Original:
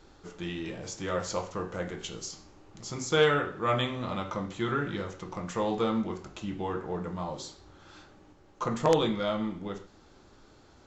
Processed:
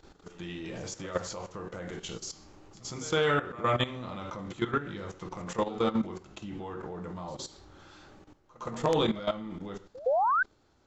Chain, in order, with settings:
sound drawn into the spectrogram rise, 0:10.06–0:10.43, 480–1,600 Hz −19 dBFS
output level in coarse steps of 14 dB
echo ahead of the sound 114 ms −19 dB
level +3 dB

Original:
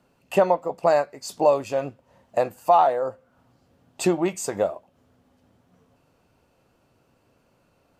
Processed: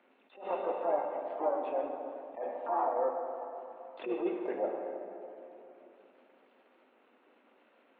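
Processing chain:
variable-slope delta modulation 16 kbit/s
gate on every frequency bin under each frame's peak −25 dB strong
Butterworth high-pass 230 Hz 48 dB per octave
transient designer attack −1 dB, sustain −7 dB
downward compressor 6 to 1, threshold −26 dBFS, peak gain reduction 10.5 dB
pitch-shifted copies added +5 semitones −9 dB
dense smooth reverb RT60 3 s, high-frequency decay 0.55×, DRR 2 dB
level that may rise only so fast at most 150 dB per second
level −3 dB

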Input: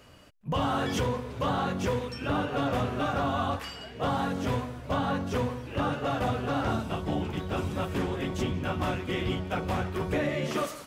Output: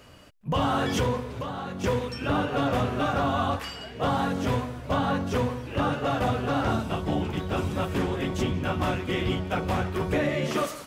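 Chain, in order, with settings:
0:01.22–0:01.84: downward compressor 12 to 1, threshold −33 dBFS, peak gain reduction 9.5 dB
level +3 dB

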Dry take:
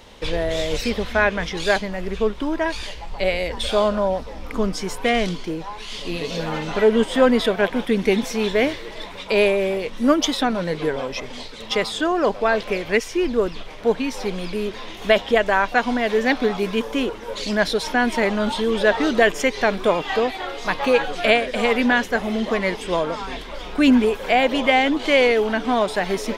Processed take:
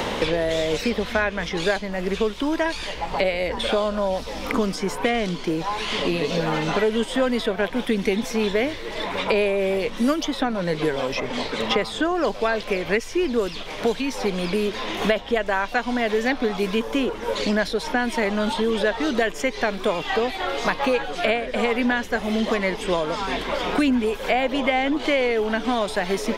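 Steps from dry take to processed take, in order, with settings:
multiband upward and downward compressor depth 100%
level −3.5 dB

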